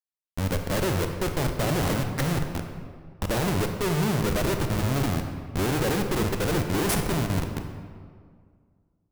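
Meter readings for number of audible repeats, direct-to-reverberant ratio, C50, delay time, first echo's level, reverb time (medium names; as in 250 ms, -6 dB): no echo, 5.0 dB, 6.0 dB, no echo, no echo, 2.0 s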